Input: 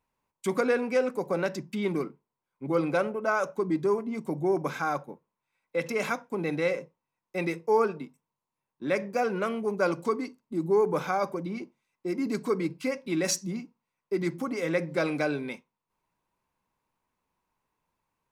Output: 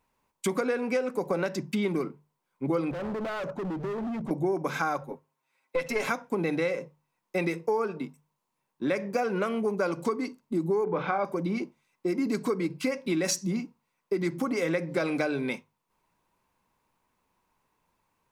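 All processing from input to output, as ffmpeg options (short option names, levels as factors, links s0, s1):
-filter_complex "[0:a]asettb=1/sr,asplit=3[s0][s1][s2];[s0]atrim=end=2.914[s3];[s1]atrim=start=2.91:end=4.31,asetpts=PTS-STARTPTS,afade=t=in:d=0.004:c=qsin,afade=t=out:st=1.396:d=0.004:c=qsin,aemphasis=mode=reproduction:type=riaa,acompressor=threshold=0.0316:ratio=8:attack=3.2:release=140:knee=1:detection=peak,asoftclip=type=hard:threshold=0.0141[s4];[s2]atrim=start=4.306[s5];[s3][s4]acrossfade=d=0.004:c1=hsin:c2=qsin[s6];[s6][s5]acrossfade=d=0.004:c1=qsin:c2=hsin,asettb=1/sr,asplit=3[s7][s8][s9];[s7]atrim=end=5.014[s10];[s8]atrim=start=5.01:end=6.07,asetpts=PTS-STARTPTS,afade=t=in:d=0.004:c=qsin,afade=t=out:st=1.056:d=0.004:c=qsin,highpass=200,aecho=1:1:7.5:0.82,atrim=end_sample=46746,aeval=exprs='(tanh(7.94*val(0)+0.6)-tanh(0.6))/7.94':c=same[s11];[s9]atrim=start=6.066[s12];[s10][s11]acrossfade=d=0.004:c1=hsin:c2=qsin[s13];[s13][s12]acrossfade=d=0.004:c1=qsin:c2=hsin,asettb=1/sr,asplit=3[s14][s15][s16];[s14]atrim=end=10.844[s17];[s15]atrim=start=10.84:end=11.25,asetpts=PTS-STARTPTS,afade=t=in:d=0.004:c=qsin,afade=t=out:st=0.406:d=0.004:c=qsin,lowpass=f=3600:w=0.5412,lowpass=f=3600:w=1.3066,asplit=2[s18][s19];[s19]adelay=30,volume=0.398[s20];[s18][s20]amix=inputs=2:normalize=0,atrim=end_sample=18081[s21];[s16]atrim=start=11.246[s22];[s17][s21]acrossfade=d=0.004:c1=hsin:c2=qsin[s23];[s23][s22]acrossfade=d=0.004:c1=qsin:c2=hsin,bandreject=f=50:t=h:w=6,bandreject=f=100:t=h:w=6,bandreject=f=150:t=h:w=6,acompressor=threshold=0.0282:ratio=6,volume=2.11"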